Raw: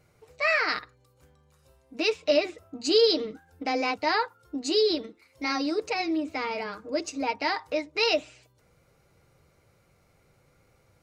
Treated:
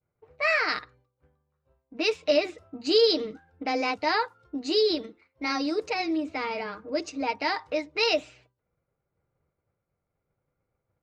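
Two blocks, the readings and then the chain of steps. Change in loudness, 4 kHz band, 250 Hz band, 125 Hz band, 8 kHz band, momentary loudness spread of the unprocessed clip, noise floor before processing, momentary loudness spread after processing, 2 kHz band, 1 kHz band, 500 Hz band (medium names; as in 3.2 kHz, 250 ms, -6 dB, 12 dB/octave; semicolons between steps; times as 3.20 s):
0.0 dB, 0.0 dB, 0.0 dB, no reading, -4.5 dB, 11 LU, -65 dBFS, 11 LU, 0.0 dB, 0.0 dB, 0.0 dB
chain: expander -52 dBFS; level-controlled noise filter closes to 1.6 kHz, open at -22 dBFS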